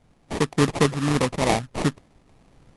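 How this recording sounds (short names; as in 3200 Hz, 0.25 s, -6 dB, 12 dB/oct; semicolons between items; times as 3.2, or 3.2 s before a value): aliases and images of a low sample rate 1500 Hz, jitter 20%; random-step tremolo; AC-3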